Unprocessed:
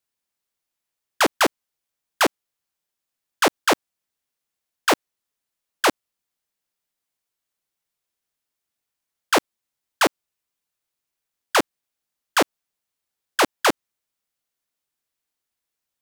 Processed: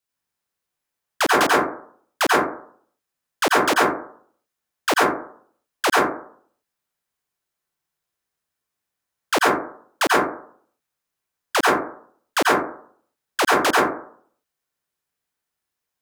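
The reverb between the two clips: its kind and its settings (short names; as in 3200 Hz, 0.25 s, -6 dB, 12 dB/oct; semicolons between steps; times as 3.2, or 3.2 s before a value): plate-style reverb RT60 0.56 s, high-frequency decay 0.3×, pre-delay 80 ms, DRR -4.5 dB; gain -2.5 dB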